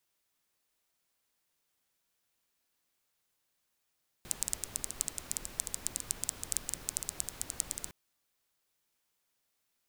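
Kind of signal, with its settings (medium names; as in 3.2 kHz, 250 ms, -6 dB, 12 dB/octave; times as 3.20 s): rain from filtered ticks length 3.66 s, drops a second 11, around 7.9 kHz, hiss -9.5 dB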